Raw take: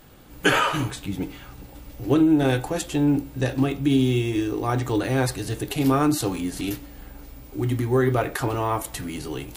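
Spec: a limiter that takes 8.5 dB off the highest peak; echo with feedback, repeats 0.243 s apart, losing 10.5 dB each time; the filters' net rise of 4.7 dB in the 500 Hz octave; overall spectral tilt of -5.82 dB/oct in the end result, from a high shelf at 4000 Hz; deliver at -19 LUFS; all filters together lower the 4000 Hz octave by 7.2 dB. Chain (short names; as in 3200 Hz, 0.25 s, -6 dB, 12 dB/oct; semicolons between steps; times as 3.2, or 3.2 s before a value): bell 500 Hz +6.5 dB; high shelf 4000 Hz -6 dB; bell 4000 Hz -7 dB; limiter -13 dBFS; feedback echo 0.243 s, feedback 30%, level -10.5 dB; gain +4.5 dB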